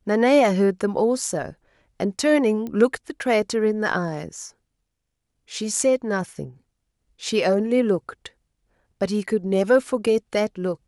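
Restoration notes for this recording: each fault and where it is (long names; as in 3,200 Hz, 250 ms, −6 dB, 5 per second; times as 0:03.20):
0:02.67: click −20 dBFS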